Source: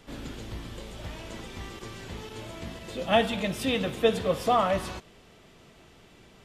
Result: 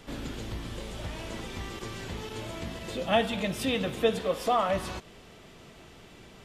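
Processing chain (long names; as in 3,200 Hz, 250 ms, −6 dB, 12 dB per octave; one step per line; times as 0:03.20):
0:00.64–0:01.48: linear delta modulator 64 kbit/s, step −52 dBFS
0:04.19–0:04.69: parametric band 110 Hz −15 dB 1 octave
in parallel at +2 dB: downward compressor, threshold −38 dBFS, peak gain reduction 20 dB
on the sum: level −3.5 dB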